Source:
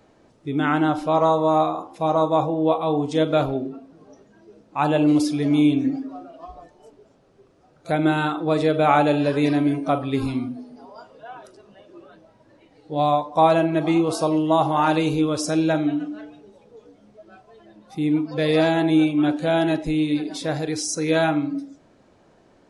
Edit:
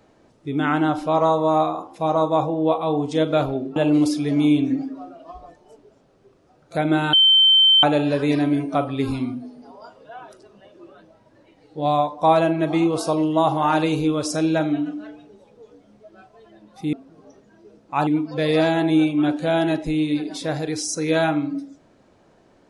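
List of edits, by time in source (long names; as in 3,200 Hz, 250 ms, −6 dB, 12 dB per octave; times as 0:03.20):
0:03.76–0:04.90: move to 0:18.07
0:08.27–0:08.97: beep over 3,100 Hz −10.5 dBFS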